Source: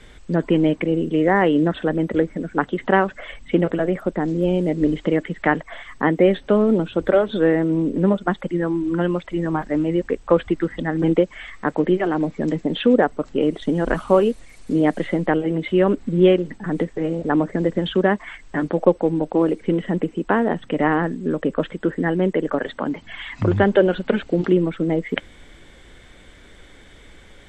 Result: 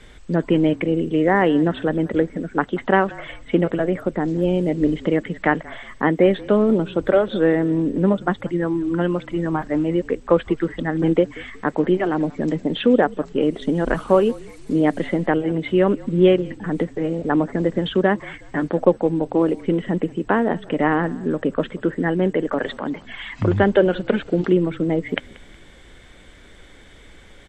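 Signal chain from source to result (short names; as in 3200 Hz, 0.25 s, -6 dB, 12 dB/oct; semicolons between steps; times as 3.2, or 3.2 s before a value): 22.52–22.94 transient shaper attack -6 dB, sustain +4 dB; frequency-shifting echo 0.183 s, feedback 37%, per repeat -38 Hz, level -22 dB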